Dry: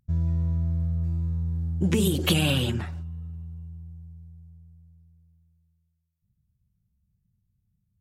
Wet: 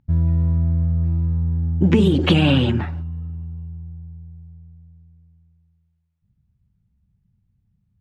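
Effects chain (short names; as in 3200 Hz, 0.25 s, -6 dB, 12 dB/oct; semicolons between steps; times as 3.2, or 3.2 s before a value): LPF 2800 Hz 12 dB/oct; small resonant body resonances 270/860 Hz, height 6 dB; gain +7 dB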